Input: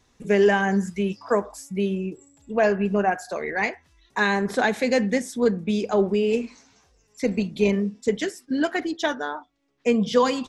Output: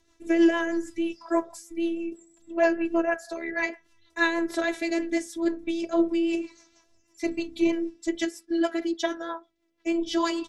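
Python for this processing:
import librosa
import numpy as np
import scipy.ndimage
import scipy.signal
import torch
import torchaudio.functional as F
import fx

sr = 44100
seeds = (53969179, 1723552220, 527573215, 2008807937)

y = fx.robotise(x, sr, hz=335.0)
y = fx.rotary(y, sr, hz=6.3)
y = y * librosa.db_to_amplitude(1.5)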